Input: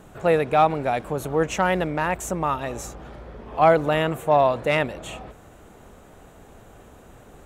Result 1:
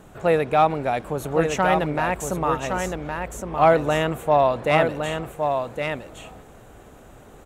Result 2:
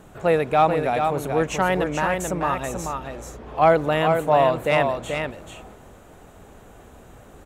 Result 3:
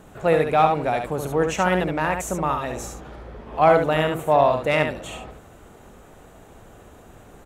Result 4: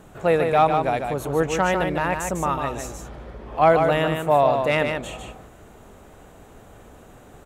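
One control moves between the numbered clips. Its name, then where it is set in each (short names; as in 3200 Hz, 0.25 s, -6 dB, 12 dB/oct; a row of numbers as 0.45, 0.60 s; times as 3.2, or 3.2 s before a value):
echo, time: 1114, 435, 71, 150 ms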